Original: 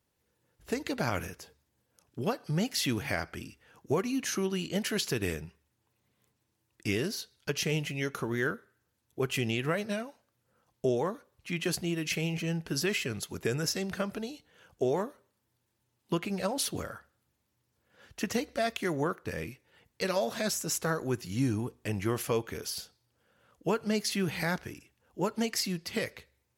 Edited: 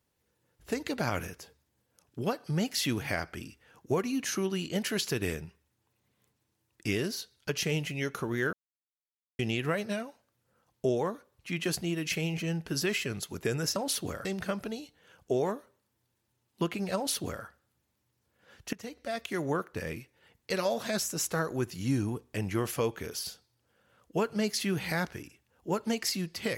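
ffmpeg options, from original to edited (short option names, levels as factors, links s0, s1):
-filter_complex "[0:a]asplit=6[s0][s1][s2][s3][s4][s5];[s0]atrim=end=8.53,asetpts=PTS-STARTPTS,afade=t=out:st=8.526:d=0.004:c=hsin[s6];[s1]atrim=start=8.53:end=9.39,asetpts=PTS-STARTPTS,volume=0[s7];[s2]atrim=start=9.39:end=13.762,asetpts=PTS-STARTPTS,afade=t=in:d=0.004:c=hsin[s8];[s3]atrim=start=16.458:end=16.952[s9];[s4]atrim=start=13.758:end=18.24,asetpts=PTS-STARTPTS,afade=t=out:st=4.478:d=0.004:c=hsin:silence=0.133352[s10];[s5]atrim=start=18.24,asetpts=PTS-STARTPTS,afade=t=in:d=0.79:silence=0.133352[s11];[s6][s7][s8]concat=n=3:v=0:a=1[s12];[s12][s9]acrossfade=d=0.004:c1=hsin:c2=hsin[s13];[s10][s11]concat=n=2:v=0:a=1[s14];[s13][s14]acrossfade=d=0.004:c1=hsin:c2=hsin"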